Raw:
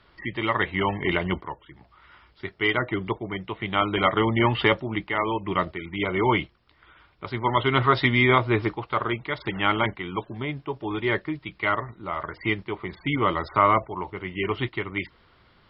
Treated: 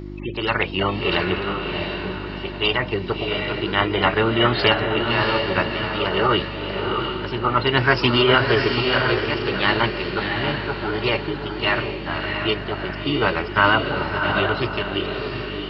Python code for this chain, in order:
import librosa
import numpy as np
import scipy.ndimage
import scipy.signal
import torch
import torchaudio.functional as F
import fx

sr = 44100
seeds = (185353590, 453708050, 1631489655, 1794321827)

y = fx.echo_diffused(x, sr, ms=683, feedback_pct=40, wet_db=-4)
y = fx.dmg_buzz(y, sr, base_hz=50.0, harmonics=7, level_db=-36.0, tilt_db=-3, odd_only=False)
y = fx.formant_shift(y, sr, semitones=5)
y = F.gain(torch.from_numpy(y), 2.5).numpy()